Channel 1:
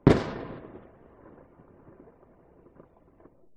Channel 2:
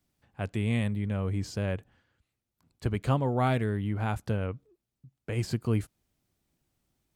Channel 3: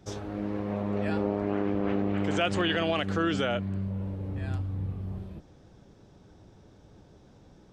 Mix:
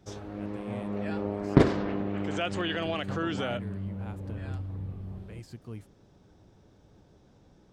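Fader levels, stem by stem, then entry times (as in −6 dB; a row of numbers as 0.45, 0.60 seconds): −1.0, −14.5, −4.0 decibels; 1.50, 0.00, 0.00 seconds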